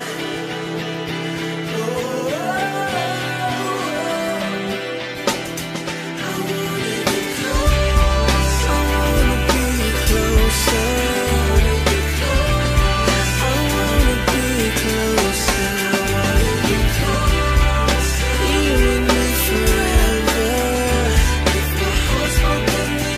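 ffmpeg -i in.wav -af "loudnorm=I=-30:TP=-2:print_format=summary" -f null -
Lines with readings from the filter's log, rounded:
Input Integrated:    -18.1 LUFS
Input True Peak:      -2.9 dBTP
Input LRA:             5.5 LU
Input Threshold:     -28.1 LUFS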